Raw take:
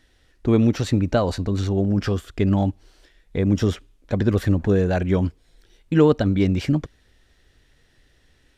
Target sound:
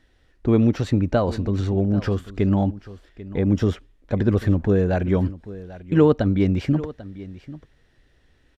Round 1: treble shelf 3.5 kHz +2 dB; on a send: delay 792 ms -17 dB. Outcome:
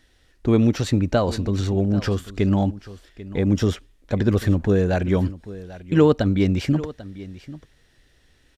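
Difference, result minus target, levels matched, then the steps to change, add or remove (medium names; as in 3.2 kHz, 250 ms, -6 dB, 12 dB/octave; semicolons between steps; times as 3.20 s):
8 kHz band +9.0 dB
change: treble shelf 3.5 kHz -9.5 dB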